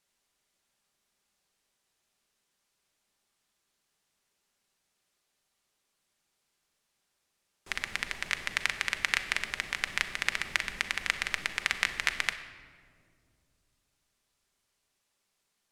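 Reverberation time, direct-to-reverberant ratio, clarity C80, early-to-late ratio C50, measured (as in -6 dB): 2.2 s, 7.5 dB, 12.0 dB, 11.0 dB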